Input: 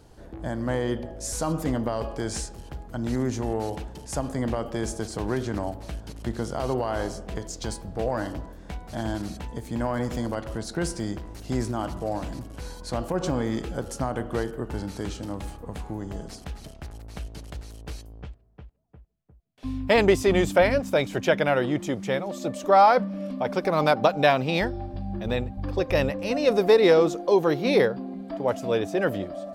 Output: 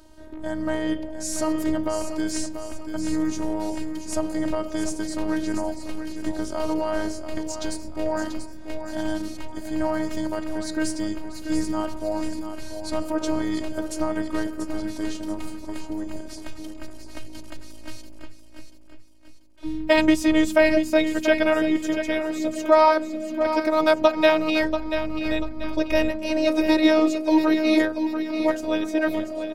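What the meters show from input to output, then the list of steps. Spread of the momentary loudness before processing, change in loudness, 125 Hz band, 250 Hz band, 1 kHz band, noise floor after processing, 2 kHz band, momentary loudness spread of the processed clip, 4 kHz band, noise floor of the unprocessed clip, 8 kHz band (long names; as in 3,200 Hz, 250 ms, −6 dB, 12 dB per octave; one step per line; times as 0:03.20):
18 LU, +1.5 dB, −9.5 dB, +6.0 dB, −1.5 dB, −37 dBFS, +2.5 dB, 17 LU, +2.5 dB, −46 dBFS, +2.5 dB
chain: phases set to zero 313 Hz
repeating echo 687 ms, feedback 41%, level −9 dB
level +4 dB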